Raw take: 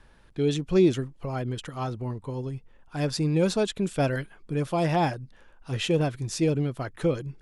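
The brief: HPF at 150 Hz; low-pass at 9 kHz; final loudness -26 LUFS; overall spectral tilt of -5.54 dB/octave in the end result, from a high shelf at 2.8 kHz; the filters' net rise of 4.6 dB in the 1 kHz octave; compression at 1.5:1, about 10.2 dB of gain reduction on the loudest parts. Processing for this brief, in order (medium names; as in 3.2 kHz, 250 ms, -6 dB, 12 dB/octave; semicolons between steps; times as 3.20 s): high-pass 150 Hz; low-pass 9 kHz; peaking EQ 1 kHz +7 dB; treble shelf 2.8 kHz -3.5 dB; compression 1.5:1, threshold -45 dBFS; trim +10 dB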